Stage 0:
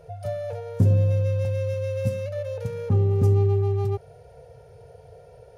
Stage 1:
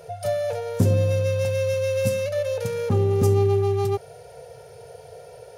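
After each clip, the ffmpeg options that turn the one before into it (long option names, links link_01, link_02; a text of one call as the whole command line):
ffmpeg -i in.wav -af "highpass=frequency=250:poles=1,highshelf=frequency=3100:gain=8.5,volume=6.5dB" out.wav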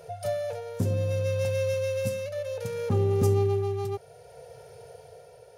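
ffmpeg -i in.wav -af "tremolo=f=0.64:d=0.41,volume=-3.5dB" out.wav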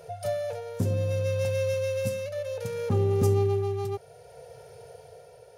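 ffmpeg -i in.wav -af anull out.wav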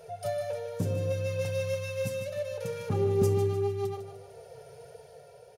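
ffmpeg -i in.wav -af "flanger=delay=4.5:depth=2.8:regen=35:speed=1.6:shape=sinusoidal,aecho=1:1:152|304|456|608|760:0.335|0.141|0.0591|0.0248|0.0104,volume=1.5dB" out.wav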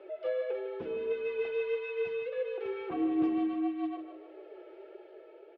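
ffmpeg -i in.wav -af "highpass=frequency=360:width_type=q:width=0.5412,highpass=frequency=360:width_type=q:width=1.307,lowpass=frequency=3200:width_type=q:width=0.5176,lowpass=frequency=3200:width_type=q:width=0.7071,lowpass=frequency=3200:width_type=q:width=1.932,afreqshift=-77" out.wav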